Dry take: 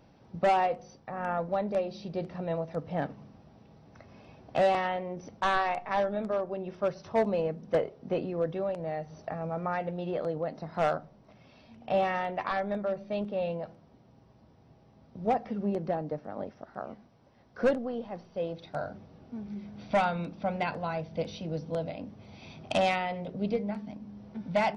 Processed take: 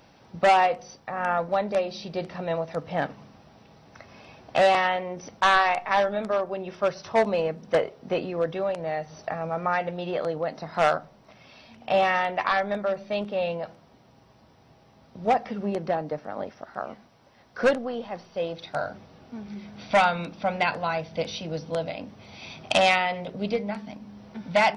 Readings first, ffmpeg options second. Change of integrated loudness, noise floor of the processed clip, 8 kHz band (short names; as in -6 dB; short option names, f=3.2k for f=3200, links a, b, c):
+5.5 dB, -57 dBFS, n/a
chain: -af "tiltshelf=f=680:g=-5.5,volume=5.5dB"